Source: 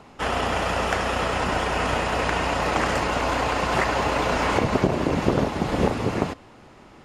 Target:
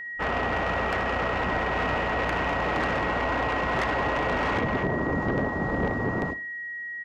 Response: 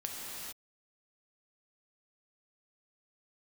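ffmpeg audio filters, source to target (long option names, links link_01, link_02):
-af "afwtdn=0.0316,lowpass=frequency=7600:width=0.5412,lowpass=frequency=7600:width=1.3066,asoftclip=type=tanh:threshold=-21.5dB,aeval=exprs='val(0)+0.02*sin(2*PI*1900*n/s)':channel_layout=same,aecho=1:1:60|120|180:0.141|0.048|0.0163"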